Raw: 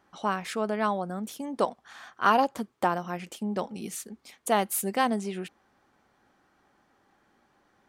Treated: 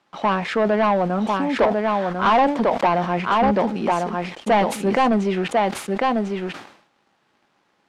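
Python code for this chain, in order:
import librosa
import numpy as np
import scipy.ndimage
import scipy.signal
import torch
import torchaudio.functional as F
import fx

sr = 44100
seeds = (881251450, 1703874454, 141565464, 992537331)

p1 = fx.peak_eq(x, sr, hz=790.0, db=5.0, octaves=1.4)
p2 = fx.notch(p1, sr, hz=760.0, q=16.0)
p3 = p2 + fx.echo_single(p2, sr, ms=1047, db=-5.0, dry=0)
p4 = fx.dynamic_eq(p3, sr, hz=1300.0, q=1.6, threshold_db=-35.0, ratio=4.0, max_db=-5)
p5 = fx.quant_dither(p4, sr, seeds[0], bits=8, dither='triangular')
p6 = p4 + (p5 * librosa.db_to_amplitude(-5.0))
p7 = 10.0 ** (-4.5 / 20.0) * np.tanh(p6 / 10.0 ** (-4.5 / 20.0))
p8 = scipy.signal.sosfilt(scipy.signal.butter(4, 120.0, 'highpass', fs=sr, output='sos'), p7)
p9 = fx.leveller(p8, sr, passes=3)
p10 = scipy.signal.sosfilt(scipy.signal.butter(2, 3100.0, 'lowpass', fs=sr, output='sos'), p9)
p11 = fx.sustainer(p10, sr, db_per_s=92.0)
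y = p11 * librosa.db_to_amplitude(-4.0)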